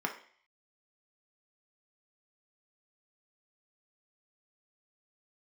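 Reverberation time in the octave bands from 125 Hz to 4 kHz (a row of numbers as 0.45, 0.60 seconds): 0.35, 0.45, 0.50, 0.50, 0.60, 0.55 seconds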